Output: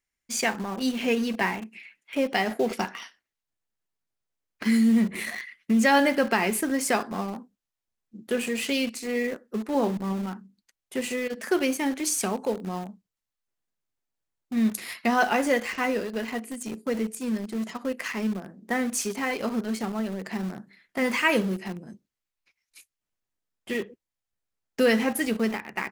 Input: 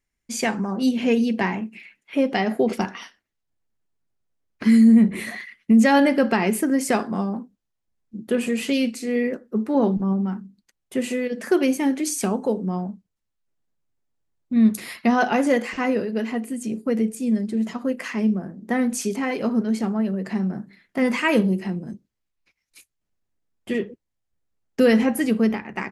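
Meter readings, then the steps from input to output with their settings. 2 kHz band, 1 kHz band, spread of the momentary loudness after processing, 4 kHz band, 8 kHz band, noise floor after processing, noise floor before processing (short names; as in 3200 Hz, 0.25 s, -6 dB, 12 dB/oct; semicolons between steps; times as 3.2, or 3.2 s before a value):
0.0 dB, -1.5 dB, 13 LU, +0.5 dB, +0.5 dB, under -85 dBFS, -79 dBFS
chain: low shelf 480 Hz -9.5 dB; in parallel at -11 dB: bit-crush 5-bit; on the sum: gain -1.5 dB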